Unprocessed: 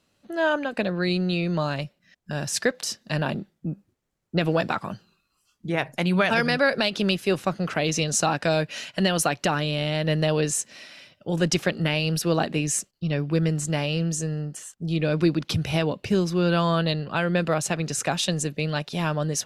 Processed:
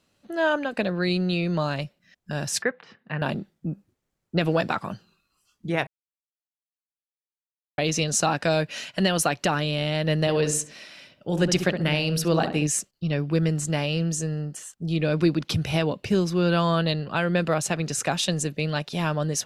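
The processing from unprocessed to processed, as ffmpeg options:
ffmpeg -i in.wav -filter_complex "[0:a]asettb=1/sr,asplit=3[link_01][link_02][link_03];[link_01]atrim=end=2.624[link_04];[link_02]atrim=start=2.62:end=3.22,asetpts=PTS-STARTPTS,afade=type=in:duration=0.004:curve=qsin,afade=type=out:start_time=0.596:duration=0.004:curve=qsin,highpass=140,equalizer=frequency=210:width_type=q:width=4:gain=-4,equalizer=frequency=310:width_type=q:width=4:gain=-8,equalizer=frequency=610:width_type=q:width=4:gain=-9,lowpass=frequency=2300:width=0.5412,lowpass=frequency=2300:width=1.3066[link_05];[link_03]atrim=start=3.216[link_06];[link_04][link_05]acrossfade=duration=0.004:curve1=hsin:curve2=qsin[link_07];[link_07][link_06]acrossfade=duration=0.004:curve1=qsin:curve2=hsin,asettb=1/sr,asplit=3[link_08][link_09][link_10];[link_08]atrim=end=10.204[link_11];[link_09]atrim=start=10.2:end=12.67,asetpts=PTS-STARTPTS,afade=type=in:duration=0.004:curve=qsin,afade=type=out:start_time=2.466:duration=0.004:curve=qsin,asplit=2[link_12][link_13];[link_13]adelay=67,lowpass=frequency=1200:poles=1,volume=-6.5dB,asplit=2[link_14][link_15];[link_15]adelay=67,lowpass=frequency=1200:poles=1,volume=0.37,asplit=2[link_16][link_17];[link_17]adelay=67,lowpass=frequency=1200:poles=1,volume=0.37,asplit=2[link_18][link_19];[link_19]adelay=67,lowpass=frequency=1200:poles=1,volume=0.37[link_20];[link_12][link_14][link_16][link_18][link_20]amix=inputs=5:normalize=0,atrim=end_sample=108927[link_21];[link_10]atrim=start=12.666[link_22];[link_11][link_21]acrossfade=duration=0.004:curve1=hsin:curve2=qsin[link_23];[link_23][link_22]acrossfade=duration=0.004:curve1=qsin:curve2=hsin,asplit=3[link_24][link_25][link_26];[link_24]atrim=end=5.87,asetpts=PTS-STARTPTS,afade=type=out:start_time=5.866:duration=0.004:curve=hsin[link_27];[link_25]atrim=start=5.87:end=7.78,asetpts=PTS-STARTPTS,volume=0[link_28];[link_26]atrim=start=7.78,asetpts=PTS-STARTPTS,afade=type=in:duration=0.004:curve=hsin[link_29];[link_27][link_28][link_29]concat=n=3:v=0:a=1" out.wav

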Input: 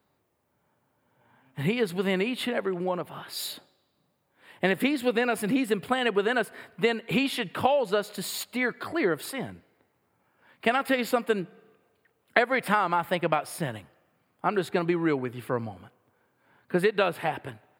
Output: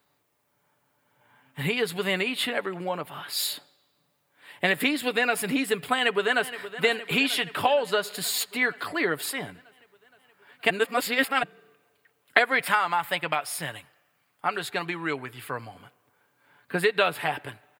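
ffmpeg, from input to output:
ffmpeg -i in.wav -filter_complex "[0:a]asplit=2[link_01][link_02];[link_02]afade=type=in:start_time=5.95:duration=0.01,afade=type=out:start_time=6.75:duration=0.01,aecho=0:1:470|940|1410|1880|2350|2820|3290|3760|4230:0.211349|0.147944|0.103561|0.0724927|0.0507449|0.0355214|0.024865|0.0174055|0.0121838[link_03];[link_01][link_03]amix=inputs=2:normalize=0,asettb=1/sr,asplit=3[link_04][link_05][link_06];[link_04]atrim=end=12.654[link_07];[link_05]atrim=start=12.65:end=15.75,asetpts=PTS-STARTPTS,afade=type=in:duration=0.004:curve=qsin,afade=type=out:start_time=3.096:duration=0.004:curve=qsin,equalizer=frequency=250:width=0.41:gain=-6[link_08];[link_06]atrim=start=15.746[link_09];[link_07][link_08]acrossfade=duration=0.004:curve1=hsin:curve2=qsin[link_10];[link_10][link_09]acrossfade=duration=0.004:curve1=qsin:curve2=hsin,asplit=3[link_11][link_12][link_13];[link_11]atrim=end=10.702[link_14];[link_12]atrim=start=10.698:end=11.432,asetpts=PTS-STARTPTS,areverse[link_15];[link_13]atrim=start=11.428[link_16];[link_14][link_15]acrossfade=duration=0.004:curve1=hsin:curve2=hsin[link_17];[link_17][link_16]acrossfade=duration=0.004:curve1=hsin:curve2=hsin,tiltshelf=frequency=930:gain=-5,aecho=1:1:6.9:0.36,volume=1dB" out.wav

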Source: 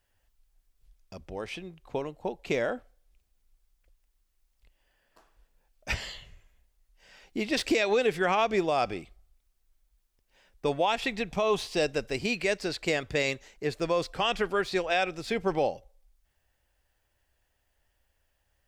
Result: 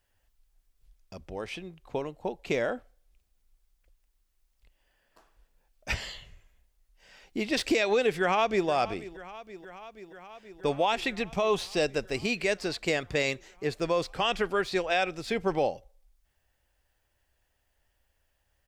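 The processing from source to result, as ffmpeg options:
ffmpeg -i in.wav -filter_complex "[0:a]asplit=2[link_01][link_02];[link_02]afade=type=in:start_time=8.18:duration=0.01,afade=type=out:start_time=8.68:duration=0.01,aecho=0:1:480|960|1440|1920|2400|2880|3360|3840|4320|4800|5280|5760:0.149624|0.119699|0.0957591|0.0766073|0.0612858|0.0490286|0.0392229|0.0313783|0.0251027|0.0200821|0.0160657|0.0128526[link_03];[link_01][link_03]amix=inputs=2:normalize=0" out.wav

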